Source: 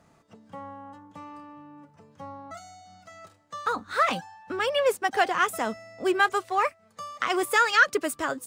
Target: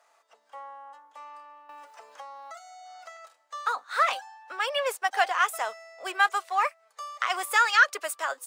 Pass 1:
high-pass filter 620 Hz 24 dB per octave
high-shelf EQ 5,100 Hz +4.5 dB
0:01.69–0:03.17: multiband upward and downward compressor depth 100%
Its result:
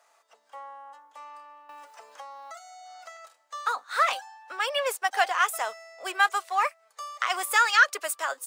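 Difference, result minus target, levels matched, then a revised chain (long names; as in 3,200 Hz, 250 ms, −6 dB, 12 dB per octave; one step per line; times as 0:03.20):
8,000 Hz band +3.0 dB
high-pass filter 620 Hz 24 dB per octave
0:01.69–0:03.17: multiband upward and downward compressor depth 100%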